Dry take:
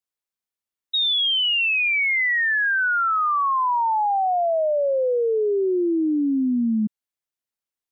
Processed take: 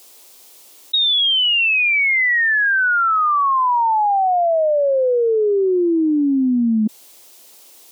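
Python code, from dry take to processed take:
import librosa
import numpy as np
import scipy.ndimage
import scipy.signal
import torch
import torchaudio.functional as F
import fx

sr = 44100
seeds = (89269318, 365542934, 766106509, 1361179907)

y = scipy.signal.sosfilt(scipy.signal.butter(4, 290.0, 'highpass', fs=sr, output='sos'), x)
y = fx.peak_eq(y, sr, hz=1600.0, db=-11.0, octaves=1.2)
y = fx.env_flatten(y, sr, amount_pct=100)
y = y * 10.0 ** (5.5 / 20.0)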